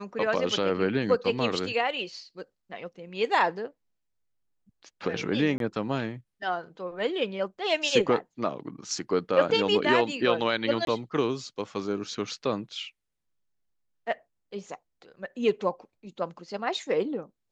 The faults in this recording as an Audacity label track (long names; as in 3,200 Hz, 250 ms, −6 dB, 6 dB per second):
5.580000	5.600000	drop-out 22 ms
10.850000	10.870000	drop-out 22 ms